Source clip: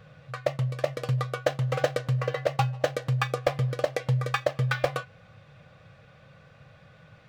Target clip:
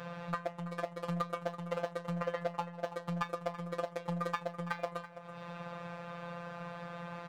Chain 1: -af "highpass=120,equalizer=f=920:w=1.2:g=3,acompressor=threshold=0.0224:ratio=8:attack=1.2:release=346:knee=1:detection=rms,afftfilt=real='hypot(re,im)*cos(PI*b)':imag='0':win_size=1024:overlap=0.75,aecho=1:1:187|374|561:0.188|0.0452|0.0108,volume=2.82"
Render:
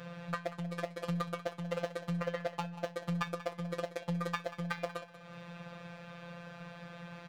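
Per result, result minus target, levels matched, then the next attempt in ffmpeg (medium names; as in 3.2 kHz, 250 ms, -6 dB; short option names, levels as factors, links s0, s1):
echo 144 ms early; 1 kHz band -3.0 dB
-af "highpass=120,equalizer=f=920:w=1.2:g=3,acompressor=threshold=0.0224:ratio=8:attack=1.2:release=346:knee=1:detection=rms,afftfilt=real='hypot(re,im)*cos(PI*b)':imag='0':win_size=1024:overlap=0.75,aecho=1:1:331|662|993:0.188|0.0452|0.0108,volume=2.82"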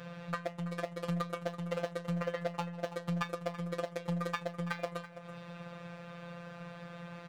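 1 kHz band -3.0 dB
-af "highpass=120,equalizer=f=920:w=1.2:g=11.5,acompressor=threshold=0.0224:ratio=8:attack=1.2:release=346:knee=1:detection=rms,afftfilt=real='hypot(re,im)*cos(PI*b)':imag='0':win_size=1024:overlap=0.75,aecho=1:1:331|662|993:0.188|0.0452|0.0108,volume=2.82"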